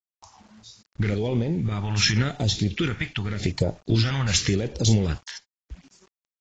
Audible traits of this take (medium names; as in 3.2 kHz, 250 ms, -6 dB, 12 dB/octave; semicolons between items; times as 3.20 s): phasing stages 2, 0.89 Hz, lowest notch 370–1600 Hz; random-step tremolo; a quantiser's noise floor 10-bit, dither none; AAC